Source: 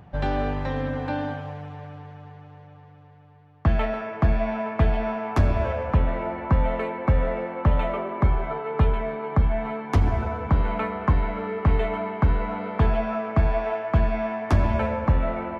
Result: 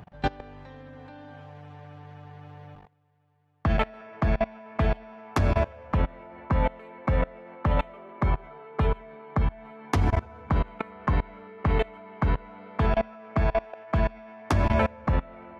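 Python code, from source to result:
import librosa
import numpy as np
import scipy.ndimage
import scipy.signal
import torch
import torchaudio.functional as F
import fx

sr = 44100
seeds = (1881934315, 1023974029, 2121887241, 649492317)

y = scipy.signal.sosfilt(scipy.signal.butter(2, 52.0, 'highpass', fs=sr, output='sos'), x)
y = fx.high_shelf(y, sr, hz=2200.0, db=4.0)
y = fx.level_steps(y, sr, step_db=24)
y = F.gain(torch.from_numpy(y), 3.0).numpy()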